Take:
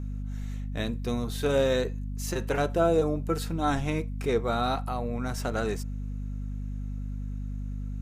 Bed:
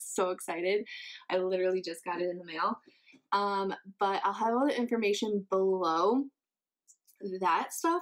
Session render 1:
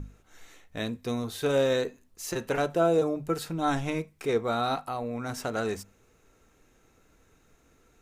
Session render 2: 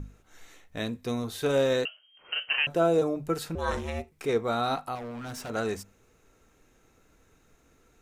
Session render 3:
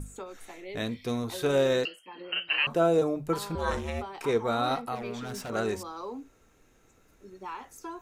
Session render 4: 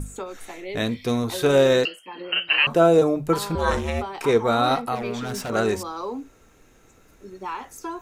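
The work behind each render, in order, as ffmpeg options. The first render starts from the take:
-af "bandreject=f=50:t=h:w=6,bandreject=f=100:t=h:w=6,bandreject=f=150:t=h:w=6,bandreject=f=200:t=h:w=6,bandreject=f=250:t=h:w=6"
-filter_complex "[0:a]asettb=1/sr,asplit=3[a][b][c];[a]atrim=end=1.854[d];[b]atrim=start=1.85:end=2.67,asetpts=PTS-STARTPTS,afade=t=in:d=0.004:c=qsin,afade=t=out:st=0.816:d=0.004:c=qsin,lowpass=f=2.7k:t=q:w=0.5098,lowpass=f=2.7k:t=q:w=0.6013,lowpass=f=2.7k:t=q:w=0.9,lowpass=f=2.7k:t=q:w=2.563,afreqshift=-3200[e];[c]atrim=start=2.666[f];[d][e]acrossfade=d=0.004:c1=hsin:c2=qsin[g];[g][f]acrossfade=d=0.004:c1=qsin:c2=hsin,asettb=1/sr,asplit=3[h][i][j];[h]atrim=end=3.554[k];[i]atrim=start=3.55:end=4.12,asetpts=PTS-STARTPTS,afade=t=in:d=0.004:c=qsin,afade=t=out:st=0.566:d=0.004:c=qsin,aeval=exprs='val(0)*sin(2*PI*230*n/s)':c=same[l];[j]atrim=start=4.116[m];[k][l]acrossfade=d=0.004:c1=hsin:c2=qsin[n];[n][m]acrossfade=d=0.004:c1=qsin:c2=hsin,asettb=1/sr,asplit=3[o][p][q];[o]atrim=end=4.954[r];[p]atrim=start=4.95:end=5.5,asetpts=PTS-STARTPTS,afade=t=in:d=0.004:c=qsin,afade=t=out:st=0.546:d=0.004:c=qsin,asoftclip=type=hard:threshold=-35.5dB[s];[q]atrim=start=5.496[t];[r][s]acrossfade=d=0.004:c1=hsin:c2=qsin[u];[u][t]acrossfade=d=0.004:c1=qsin:c2=hsin"
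-filter_complex "[1:a]volume=-11.5dB[a];[0:a][a]amix=inputs=2:normalize=0"
-af "volume=7.5dB"

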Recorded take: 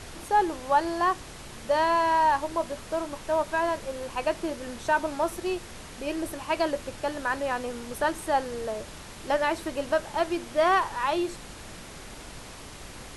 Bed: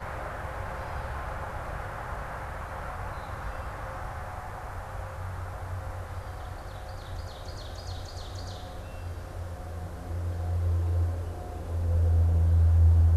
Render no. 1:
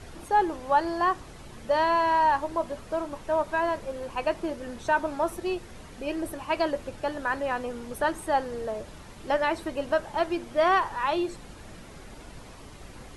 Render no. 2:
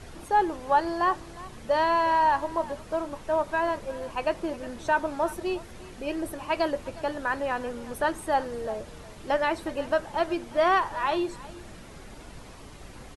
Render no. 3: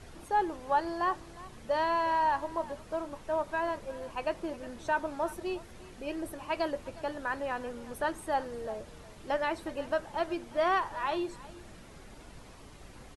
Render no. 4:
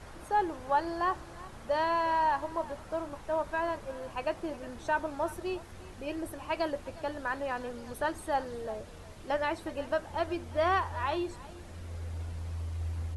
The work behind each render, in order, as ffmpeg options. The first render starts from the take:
-af "afftdn=nr=8:nf=-44"
-af "aecho=1:1:360:0.112"
-af "volume=-5.5dB"
-filter_complex "[1:a]volume=-15.5dB[a];[0:a][a]amix=inputs=2:normalize=0"

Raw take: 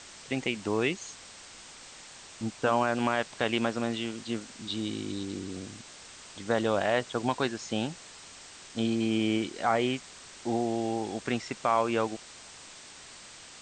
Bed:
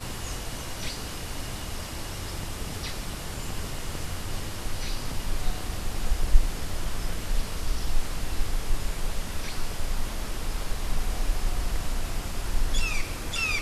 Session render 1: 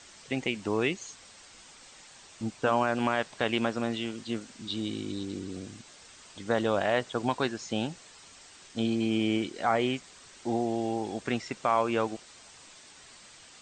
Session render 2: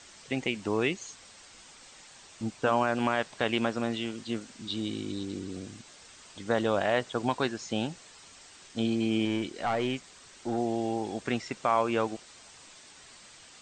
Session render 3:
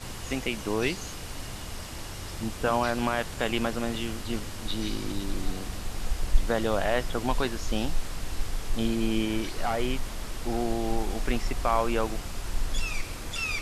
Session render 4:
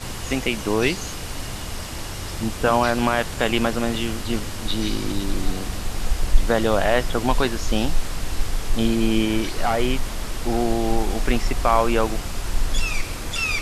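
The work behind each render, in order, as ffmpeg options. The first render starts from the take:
-af "afftdn=nr=6:nf=-49"
-filter_complex "[0:a]asettb=1/sr,asplit=3[a][b][c];[a]atrim=end=9.254[d];[b]atrim=start=9.25:end=10.58,asetpts=PTS-STARTPTS,afade=t=in:d=0.004:c=qsin,afade=t=out:st=1.326:d=0.004:c=qsin,aeval=exprs='(tanh(12.6*val(0)+0.25)-tanh(0.25))/12.6':c=same[e];[c]atrim=start=10.576[f];[d][e]acrossfade=d=0.004:c1=hsin:c2=qsin[g];[g][f]acrossfade=d=0.004:c1=qsin:c2=hsin"
-filter_complex "[1:a]volume=-3.5dB[a];[0:a][a]amix=inputs=2:normalize=0"
-af "volume=7dB,alimiter=limit=-2dB:level=0:latency=1"

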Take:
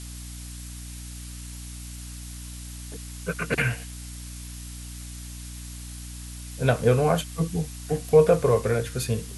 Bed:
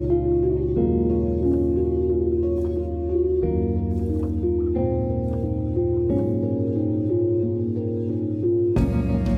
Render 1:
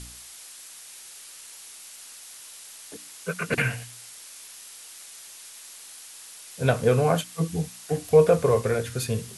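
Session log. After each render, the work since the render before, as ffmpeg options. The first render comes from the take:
-af "bandreject=f=60:t=h:w=4,bandreject=f=120:t=h:w=4,bandreject=f=180:t=h:w=4,bandreject=f=240:t=h:w=4,bandreject=f=300:t=h:w=4"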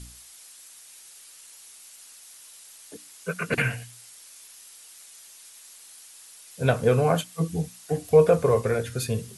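-af "afftdn=nr=6:nf=-45"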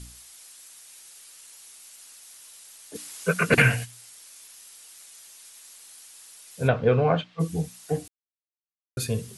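-filter_complex "[0:a]asplit=3[a][b][c];[a]afade=t=out:st=2.94:d=0.02[d];[b]acontrast=81,afade=t=in:st=2.94:d=0.02,afade=t=out:st=3.84:d=0.02[e];[c]afade=t=in:st=3.84:d=0.02[f];[d][e][f]amix=inputs=3:normalize=0,asplit=3[g][h][i];[g]afade=t=out:st=6.67:d=0.02[j];[h]lowpass=f=3.7k:w=0.5412,lowpass=f=3.7k:w=1.3066,afade=t=in:st=6.67:d=0.02,afade=t=out:st=7.39:d=0.02[k];[i]afade=t=in:st=7.39:d=0.02[l];[j][k][l]amix=inputs=3:normalize=0,asplit=3[m][n][o];[m]atrim=end=8.08,asetpts=PTS-STARTPTS,afade=t=out:st=8.076:d=0.004:c=hsin[p];[n]atrim=start=8.08:end=8.97,asetpts=PTS-STARTPTS,volume=0[q];[o]atrim=start=8.97,asetpts=PTS-STARTPTS,afade=t=in:d=0.004:c=hsin[r];[p][q][r]concat=n=3:v=0:a=1"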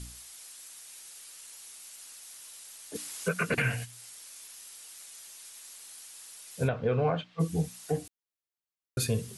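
-af "alimiter=limit=-18dB:level=0:latency=1:release=387"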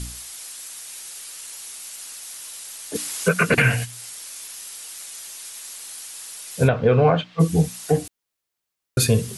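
-af "volume=11dB"

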